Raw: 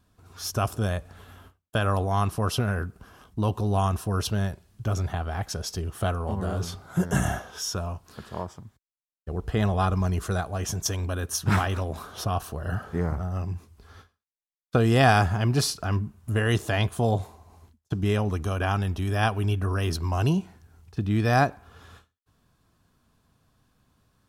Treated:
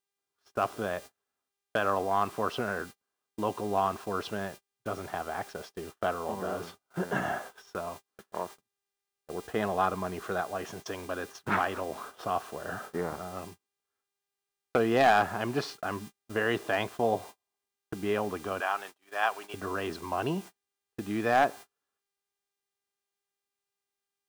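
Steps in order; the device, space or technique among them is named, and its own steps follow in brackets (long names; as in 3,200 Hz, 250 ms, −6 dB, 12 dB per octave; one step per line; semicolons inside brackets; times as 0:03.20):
0:18.60–0:19.54: high-pass filter 680 Hz 12 dB per octave
aircraft radio (band-pass filter 320–2,400 Hz; hard clipping −15.5 dBFS, distortion −17 dB; hum with harmonics 400 Hz, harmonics 27, −55 dBFS −2 dB per octave; white noise bed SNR 22 dB; noise gate −42 dBFS, range −37 dB)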